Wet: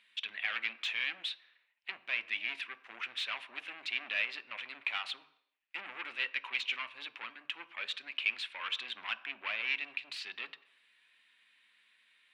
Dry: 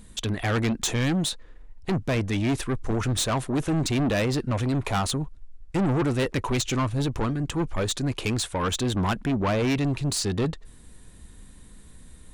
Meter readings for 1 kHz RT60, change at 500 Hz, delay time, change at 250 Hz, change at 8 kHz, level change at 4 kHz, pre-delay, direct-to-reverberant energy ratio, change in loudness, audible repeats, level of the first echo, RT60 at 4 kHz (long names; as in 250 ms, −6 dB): 0.75 s, −28.0 dB, no echo audible, −37.5 dB, −27.5 dB, −5.0 dB, 3 ms, 11.0 dB, −11.0 dB, no echo audible, no echo audible, 0.70 s